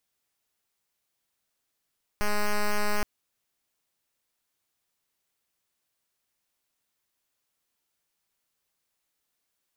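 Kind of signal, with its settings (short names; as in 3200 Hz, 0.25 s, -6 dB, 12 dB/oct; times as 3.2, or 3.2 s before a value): pulse 208 Hz, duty 6% -24 dBFS 0.82 s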